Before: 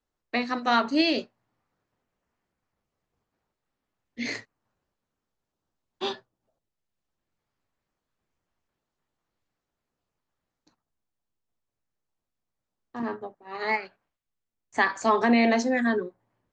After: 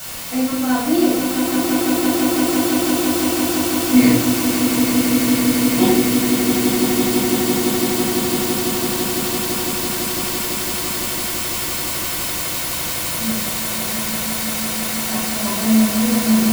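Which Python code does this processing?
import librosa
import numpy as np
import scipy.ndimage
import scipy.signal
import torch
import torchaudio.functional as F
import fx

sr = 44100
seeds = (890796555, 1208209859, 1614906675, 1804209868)

p1 = fx.doppler_pass(x, sr, speed_mps=22, closest_m=15.0, pass_at_s=4.69)
p2 = fx.tilt_shelf(p1, sr, db=9.5, hz=670.0)
p3 = fx.quant_dither(p2, sr, seeds[0], bits=6, dither='triangular')
p4 = p2 + (p3 * 10.0 ** (-5.0 / 20.0))
p5 = fx.notch_comb(p4, sr, f0_hz=410.0)
p6 = p5 + fx.echo_swell(p5, sr, ms=168, loudest=8, wet_db=-6.5, dry=0)
p7 = fx.room_shoebox(p6, sr, seeds[1], volume_m3=850.0, walls='furnished', distance_m=7.4)
y = p7 * 10.0 ** (5.5 / 20.0)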